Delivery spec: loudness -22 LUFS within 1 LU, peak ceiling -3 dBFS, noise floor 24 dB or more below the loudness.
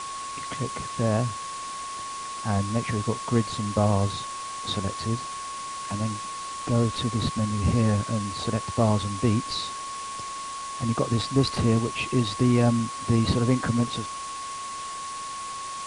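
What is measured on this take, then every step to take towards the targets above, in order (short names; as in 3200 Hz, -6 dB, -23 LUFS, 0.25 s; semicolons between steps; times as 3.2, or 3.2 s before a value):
steady tone 1100 Hz; tone level -33 dBFS; noise floor -35 dBFS; noise floor target -51 dBFS; loudness -27.0 LUFS; peak -8.5 dBFS; loudness target -22.0 LUFS
-> notch 1100 Hz, Q 30; denoiser 16 dB, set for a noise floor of -35 dBFS; gain +5 dB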